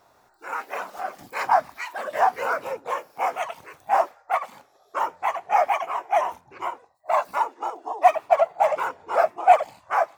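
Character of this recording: noise floor -61 dBFS; spectral tilt +5.5 dB/oct

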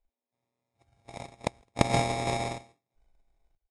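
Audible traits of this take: a buzz of ramps at a fixed pitch in blocks of 64 samples; random-step tremolo 3.1 Hz, depth 85%; aliases and images of a low sample rate 1500 Hz, jitter 0%; Vorbis

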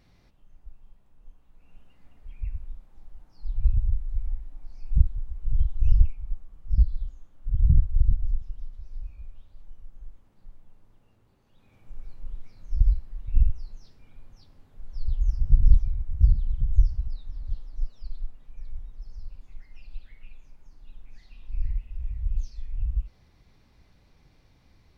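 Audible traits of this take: noise floor -60 dBFS; spectral tilt -10.0 dB/oct

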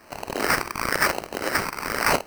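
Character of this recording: phasing stages 6, 1 Hz, lowest notch 610–1300 Hz; aliases and images of a low sample rate 3500 Hz, jitter 0%

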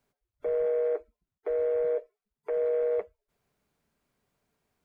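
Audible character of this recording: noise floor -91 dBFS; spectral tilt -4.5 dB/oct

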